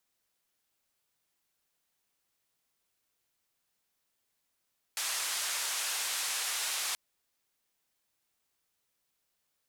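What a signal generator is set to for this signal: noise band 880–10000 Hz, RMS -34 dBFS 1.98 s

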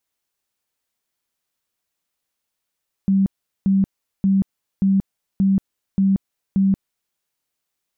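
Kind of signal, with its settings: tone bursts 194 Hz, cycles 35, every 0.58 s, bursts 7, -13 dBFS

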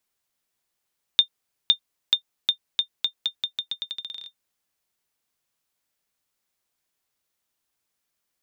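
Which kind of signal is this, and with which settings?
bouncing ball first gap 0.51 s, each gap 0.84, 3620 Hz, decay 91 ms -5 dBFS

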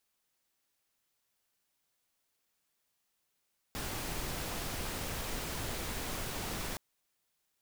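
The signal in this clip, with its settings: noise pink, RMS -38 dBFS 3.02 s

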